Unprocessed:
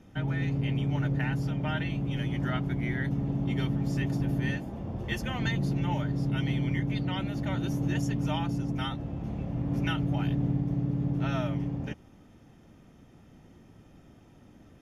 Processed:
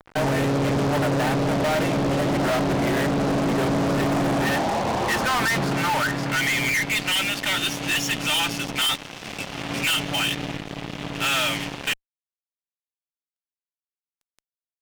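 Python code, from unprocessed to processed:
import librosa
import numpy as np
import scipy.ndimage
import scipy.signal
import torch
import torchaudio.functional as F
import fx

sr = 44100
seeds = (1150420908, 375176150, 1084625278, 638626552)

y = fx.rider(x, sr, range_db=10, speed_s=2.0)
y = fx.filter_sweep_bandpass(y, sr, from_hz=610.0, to_hz=2900.0, start_s=3.92, end_s=7.36, q=2.1)
y = fx.fuzz(y, sr, gain_db=55.0, gate_db=-58.0)
y = y * 10.0 ** (-7.0 / 20.0)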